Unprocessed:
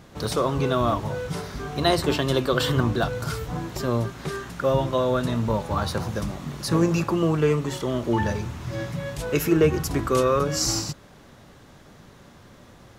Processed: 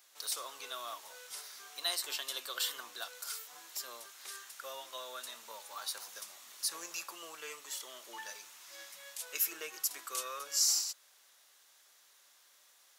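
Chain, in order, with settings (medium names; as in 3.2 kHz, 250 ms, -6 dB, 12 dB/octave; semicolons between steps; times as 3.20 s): high-pass 500 Hz 12 dB/octave; differentiator; trim -1.5 dB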